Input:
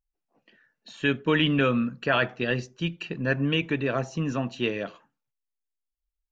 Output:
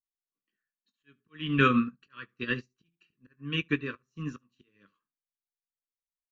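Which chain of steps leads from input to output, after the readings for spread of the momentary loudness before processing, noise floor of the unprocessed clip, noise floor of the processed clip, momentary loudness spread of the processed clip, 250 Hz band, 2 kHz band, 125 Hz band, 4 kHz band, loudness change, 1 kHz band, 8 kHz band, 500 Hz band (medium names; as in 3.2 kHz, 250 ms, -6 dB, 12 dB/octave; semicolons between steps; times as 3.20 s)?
9 LU, -85 dBFS, under -85 dBFS, 18 LU, -5.0 dB, -5.0 dB, -6.5 dB, -8.0 dB, -3.5 dB, -2.5 dB, no reading, -10.0 dB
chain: peaking EQ 1.1 kHz +13.5 dB 0.47 oct; slow attack 357 ms; Butterworth band-stop 740 Hz, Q 0.8; on a send: early reflections 20 ms -10 dB, 71 ms -16 dB; on the sum: upward expansion 2.5:1, over -42 dBFS; trim +2.5 dB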